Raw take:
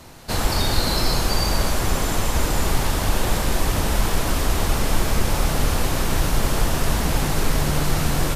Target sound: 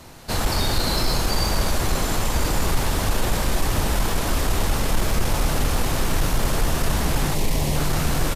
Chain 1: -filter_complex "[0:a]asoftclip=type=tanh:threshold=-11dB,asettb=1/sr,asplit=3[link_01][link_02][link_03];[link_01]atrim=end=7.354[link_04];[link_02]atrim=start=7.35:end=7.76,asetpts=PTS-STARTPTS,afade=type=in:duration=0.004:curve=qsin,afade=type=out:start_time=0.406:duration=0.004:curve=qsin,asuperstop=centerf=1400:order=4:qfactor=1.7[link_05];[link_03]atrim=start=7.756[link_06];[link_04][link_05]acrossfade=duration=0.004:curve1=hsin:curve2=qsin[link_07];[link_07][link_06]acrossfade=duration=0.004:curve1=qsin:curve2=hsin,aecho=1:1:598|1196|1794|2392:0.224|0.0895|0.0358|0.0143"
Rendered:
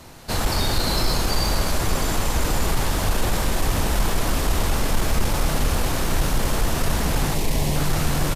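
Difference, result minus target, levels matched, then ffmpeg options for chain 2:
echo 438 ms early
-filter_complex "[0:a]asoftclip=type=tanh:threshold=-11dB,asettb=1/sr,asplit=3[link_01][link_02][link_03];[link_01]atrim=end=7.354[link_04];[link_02]atrim=start=7.35:end=7.76,asetpts=PTS-STARTPTS,afade=type=in:duration=0.004:curve=qsin,afade=type=out:start_time=0.406:duration=0.004:curve=qsin,asuperstop=centerf=1400:order=4:qfactor=1.7[link_05];[link_03]atrim=start=7.756[link_06];[link_04][link_05]acrossfade=duration=0.004:curve1=hsin:curve2=qsin[link_07];[link_07][link_06]acrossfade=duration=0.004:curve1=qsin:curve2=hsin,aecho=1:1:1036|2072|3108|4144:0.224|0.0895|0.0358|0.0143"

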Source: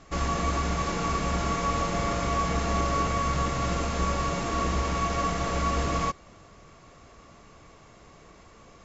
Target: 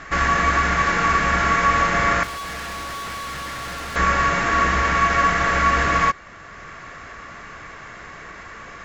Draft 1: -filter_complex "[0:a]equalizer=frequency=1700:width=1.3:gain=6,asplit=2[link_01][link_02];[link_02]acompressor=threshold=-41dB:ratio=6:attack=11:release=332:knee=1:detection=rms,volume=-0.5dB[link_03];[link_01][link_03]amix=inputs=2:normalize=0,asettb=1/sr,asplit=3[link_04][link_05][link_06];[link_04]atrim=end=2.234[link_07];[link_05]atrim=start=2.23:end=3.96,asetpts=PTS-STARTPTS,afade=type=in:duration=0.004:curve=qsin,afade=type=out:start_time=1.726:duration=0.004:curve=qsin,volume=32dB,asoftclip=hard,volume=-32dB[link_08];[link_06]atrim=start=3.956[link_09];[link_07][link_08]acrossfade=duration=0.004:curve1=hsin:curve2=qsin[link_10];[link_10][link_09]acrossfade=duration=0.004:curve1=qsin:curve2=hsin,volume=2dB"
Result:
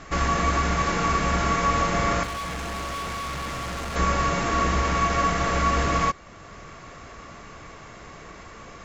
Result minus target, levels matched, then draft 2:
2,000 Hz band −4.0 dB
-filter_complex "[0:a]equalizer=frequency=1700:width=1.3:gain=17.5,asplit=2[link_01][link_02];[link_02]acompressor=threshold=-41dB:ratio=6:attack=11:release=332:knee=1:detection=rms,volume=-0.5dB[link_03];[link_01][link_03]amix=inputs=2:normalize=0,asettb=1/sr,asplit=3[link_04][link_05][link_06];[link_04]atrim=end=2.234[link_07];[link_05]atrim=start=2.23:end=3.96,asetpts=PTS-STARTPTS,afade=type=in:duration=0.004:curve=qsin,afade=type=out:start_time=1.726:duration=0.004:curve=qsin,volume=32dB,asoftclip=hard,volume=-32dB[link_08];[link_06]atrim=start=3.956[link_09];[link_07][link_08]acrossfade=duration=0.004:curve1=hsin:curve2=qsin[link_10];[link_10][link_09]acrossfade=duration=0.004:curve1=qsin:curve2=hsin,volume=2dB"

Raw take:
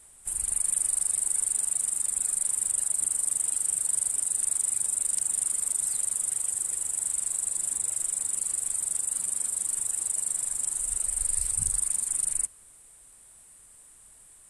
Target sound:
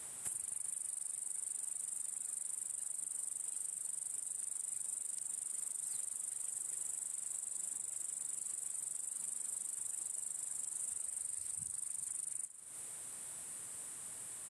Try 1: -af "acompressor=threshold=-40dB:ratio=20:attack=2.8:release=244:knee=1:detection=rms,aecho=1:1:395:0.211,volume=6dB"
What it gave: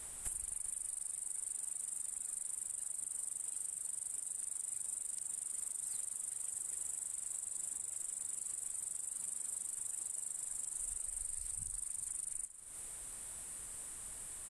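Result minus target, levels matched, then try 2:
125 Hz band +4.0 dB
-af "acompressor=threshold=-40dB:ratio=20:attack=2.8:release=244:knee=1:detection=rms,highpass=frequency=100:width=0.5412,highpass=frequency=100:width=1.3066,aecho=1:1:395:0.211,volume=6dB"

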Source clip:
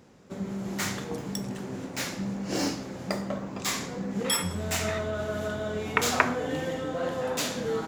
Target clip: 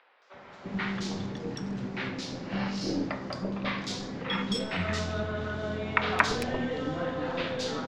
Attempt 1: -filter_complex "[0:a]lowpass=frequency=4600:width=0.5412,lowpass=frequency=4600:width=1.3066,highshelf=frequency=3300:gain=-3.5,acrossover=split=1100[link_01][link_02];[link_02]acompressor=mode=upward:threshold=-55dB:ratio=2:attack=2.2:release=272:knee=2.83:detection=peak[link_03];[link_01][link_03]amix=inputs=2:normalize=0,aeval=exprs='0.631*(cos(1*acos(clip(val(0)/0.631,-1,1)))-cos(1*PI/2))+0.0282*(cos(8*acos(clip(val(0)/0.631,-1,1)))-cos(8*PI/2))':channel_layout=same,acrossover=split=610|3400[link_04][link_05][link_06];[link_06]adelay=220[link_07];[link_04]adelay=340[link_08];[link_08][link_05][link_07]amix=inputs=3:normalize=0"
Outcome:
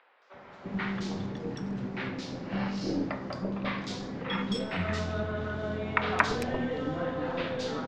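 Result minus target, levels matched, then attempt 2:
8,000 Hz band −5.0 dB
-filter_complex "[0:a]lowpass=frequency=4600:width=0.5412,lowpass=frequency=4600:width=1.3066,highshelf=frequency=3300:gain=4,acrossover=split=1100[link_01][link_02];[link_02]acompressor=mode=upward:threshold=-55dB:ratio=2:attack=2.2:release=272:knee=2.83:detection=peak[link_03];[link_01][link_03]amix=inputs=2:normalize=0,aeval=exprs='0.631*(cos(1*acos(clip(val(0)/0.631,-1,1)))-cos(1*PI/2))+0.0282*(cos(8*acos(clip(val(0)/0.631,-1,1)))-cos(8*PI/2))':channel_layout=same,acrossover=split=610|3400[link_04][link_05][link_06];[link_06]adelay=220[link_07];[link_04]adelay=340[link_08];[link_08][link_05][link_07]amix=inputs=3:normalize=0"

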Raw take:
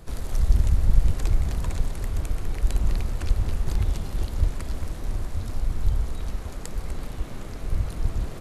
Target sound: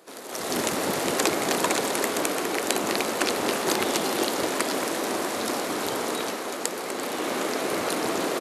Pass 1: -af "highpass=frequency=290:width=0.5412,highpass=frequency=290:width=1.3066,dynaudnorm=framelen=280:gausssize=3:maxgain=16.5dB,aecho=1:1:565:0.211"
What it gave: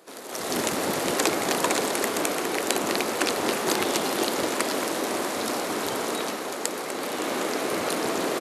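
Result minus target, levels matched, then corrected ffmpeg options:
echo 222 ms late
-af "highpass=frequency=290:width=0.5412,highpass=frequency=290:width=1.3066,dynaudnorm=framelen=280:gausssize=3:maxgain=16.5dB,aecho=1:1:343:0.211"

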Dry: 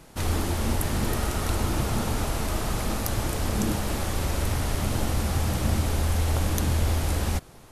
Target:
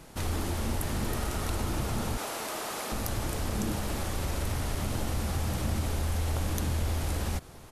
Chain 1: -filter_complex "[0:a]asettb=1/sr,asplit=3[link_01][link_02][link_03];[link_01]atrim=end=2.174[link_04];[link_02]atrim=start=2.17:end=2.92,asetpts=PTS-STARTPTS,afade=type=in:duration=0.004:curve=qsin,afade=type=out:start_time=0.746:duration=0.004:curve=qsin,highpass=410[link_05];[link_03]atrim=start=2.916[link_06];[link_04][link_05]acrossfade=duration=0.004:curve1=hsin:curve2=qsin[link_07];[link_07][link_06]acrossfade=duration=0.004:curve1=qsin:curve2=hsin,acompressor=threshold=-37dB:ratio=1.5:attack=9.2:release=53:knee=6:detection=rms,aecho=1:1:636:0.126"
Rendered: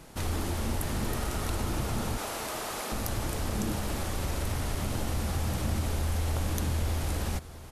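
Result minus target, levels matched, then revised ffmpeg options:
echo-to-direct +11.5 dB
-filter_complex "[0:a]asettb=1/sr,asplit=3[link_01][link_02][link_03];[link_01]atrim=end=2.174[link_04];[link_02]atrim=start=2.17:end=2.92,asetpts=PTS-STARTPTS,afade=type=in:duration=0.004:curve=qsin,afade=type=out:start_time=0.746:duration=0.004:curve=qsin,highpass=410[link_05];[link_03]atrim=start=2.916[link_06];[link_04][link_05]acrossfade=duration=0.004:curve1=hsin:curve2=qsin[link_07];[link_07][link_06]acrossfade=duration=0.004:curve1=qsin:curve2=hsin,acompressor=threshold=-37dB:ratio=1.5:attack=9.2:release=53:knee=6:detection=rms,aecho=1:1:636:0.0335"

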